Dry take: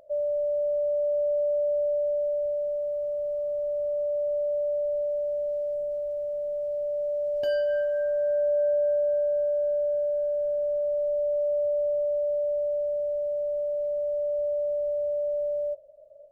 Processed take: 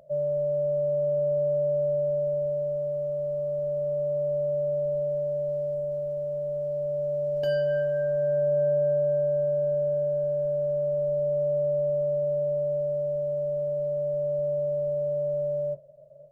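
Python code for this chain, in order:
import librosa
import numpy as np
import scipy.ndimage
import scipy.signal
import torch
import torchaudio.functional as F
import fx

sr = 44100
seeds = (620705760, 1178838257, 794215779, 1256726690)

y = fx.octave_divider(x, sr, octaves=2, level_db=0.0)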